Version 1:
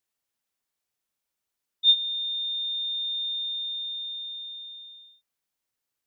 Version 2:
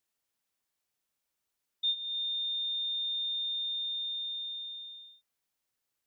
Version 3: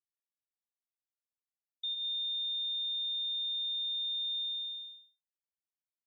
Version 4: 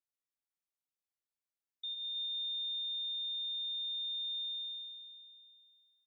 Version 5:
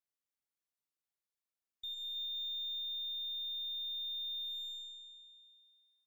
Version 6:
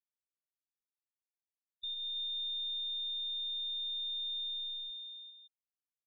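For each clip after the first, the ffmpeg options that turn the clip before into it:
-af "acompressor=threshold=-33dB:ratio=3"
-af "agate=range=-33dB:threshold=-41dB:ratio=3:detection=peak,alimiter=level_in=10.5dB:limit=-24dB:level=0:latency=1,volume=-10.5dB,volume=2.5dB"
-af "aecho=1:1:322|644|966|1288:0.335|0.137|0.0563|0.0231,volume=-4.5dB"
-af "aeval=exprs='0.0188*(cos(1*acos(clip(val(0)/0.0188,-1,1)))-cos(1*PI/2))+0.000531*(cos(2*acos(clip(val(0)/0.0188,-1,1)))-cos(2*PI/2))+0.00075*(cos(6*acos(clip(val(0)/0.0188,-1,1)))-cos(6*PI/2))':c=same,volume=-2dB"
-filter_complex "[0:a]afftfilt=real='re*gte(hypot(re,im),0.01)':imag='im*gte(hypot(re,im),0.01)':win_size=1024:overlap=0.75,acrossover=split=3000[a][b];[b]acompressor=threshold=-53dB:ratio=4:attack=1:release=60[c];[a][c]amix=inputs=2:normalize=0,volume=7.5dB"

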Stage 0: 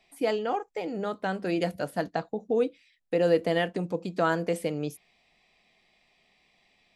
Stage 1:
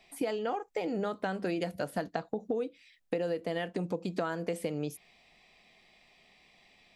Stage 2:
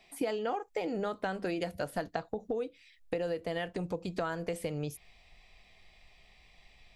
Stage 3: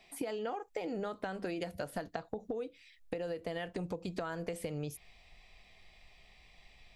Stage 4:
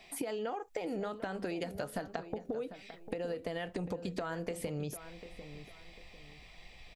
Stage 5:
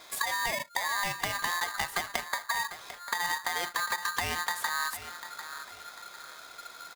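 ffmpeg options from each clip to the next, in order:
-af "acompressor=threshold=-33dB:ratio=12,volume=4dB"
-af "asubboost=boost=10:cutoff=75"
-af "acompressor=threshold=-34dB:ratio=6"
-filter_complex "[0:a]acompressor=threshold=-43dB:ratio=2,asplit=2[a][b];[b]adelay=747,lowpass=f=2k:p=1,volume=-12dB,asplit=2[c][d];[d]adelay=747,lowpass=f=2k:p=1,volume=0.34,asplit=2[e][f];[f]adelay=747,lowpass=f=2k:p=1,volume=0.34[g];[a][c][e][g]amix=inputs=4:normalize=0,volume=5.5dB"
-af "aeval=exprs='val(0)*sgn(sin(2*PI*1400*n/s))':c=same,volume=6dB"

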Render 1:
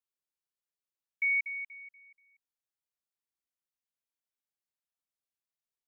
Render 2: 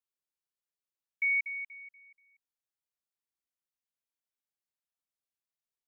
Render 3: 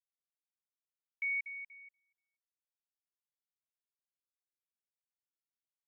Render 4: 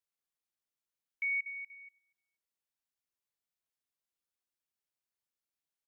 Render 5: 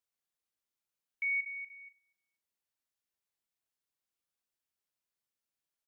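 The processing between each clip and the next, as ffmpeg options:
-af anull
-af "agate=range=-18dB:threshold=-53dB:ratio=16:detection=peak,volume=-6.5dB"
-filter_complex "[0:a]asplit=2[a][b];[b]adelay=99.13,volume=-24dB,highshelf=f=4k:g=-2.23[c];[a][c]amix=inputs=2:normalize=0,volume=1.5dB"
-filter_complex "[0:a]asplit=2[a][b];[b]adelay=40,volume=-13dB[c];[a][c]amix=inputs=2:normalize=0"

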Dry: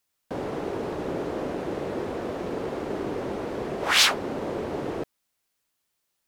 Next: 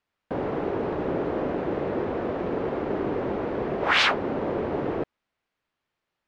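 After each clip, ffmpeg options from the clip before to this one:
-af "lowpass=2.5k,volume=3dB"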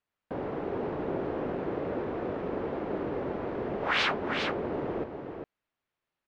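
-af "highshelf=f=7.2k:g=-7,aecho=1:1:403:0.501,volume=-6dB"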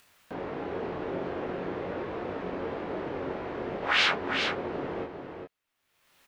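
-af "acompressor=mode=upward:threshold=-47dB:ratio=2.5,tiltshelf=f=1.4k:g=-4.5,aecho=1:1:22|33:0.631|0.447"

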